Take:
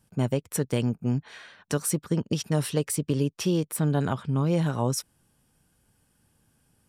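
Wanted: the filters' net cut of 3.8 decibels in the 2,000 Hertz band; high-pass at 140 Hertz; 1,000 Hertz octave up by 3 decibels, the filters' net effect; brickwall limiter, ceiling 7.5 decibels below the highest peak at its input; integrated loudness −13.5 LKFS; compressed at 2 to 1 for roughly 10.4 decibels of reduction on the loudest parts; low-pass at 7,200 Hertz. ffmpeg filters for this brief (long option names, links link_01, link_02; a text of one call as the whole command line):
ffmpeg -i in.wav -af "highpass=140,lowpass=7200,equalizer=frequency=1000:width_type=o:gain=5.5,equalizer=frequency=2000:width_type=o:gain=-8,acompressor=threshold=-40dB:ratio=2,volume=26.5dB,alimiter=limit=-1.5dB:level=0:latency=1" out.wav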